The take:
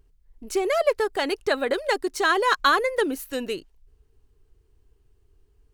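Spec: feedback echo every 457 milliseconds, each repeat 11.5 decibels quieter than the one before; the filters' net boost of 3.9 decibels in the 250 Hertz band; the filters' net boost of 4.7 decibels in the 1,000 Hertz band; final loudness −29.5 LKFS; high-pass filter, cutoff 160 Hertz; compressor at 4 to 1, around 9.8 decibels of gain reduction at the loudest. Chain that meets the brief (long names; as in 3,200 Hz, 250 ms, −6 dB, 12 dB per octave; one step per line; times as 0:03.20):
high-pass filter 160 Hz
parametric band 250 Hz +5.5 dB
parametric band 1,000 Hz +5.5 dB
downward compressor 4 to 1, threshold −24 dBFS
repeating echo 457 ms, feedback 27%, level −11.5 dB
level −2 dB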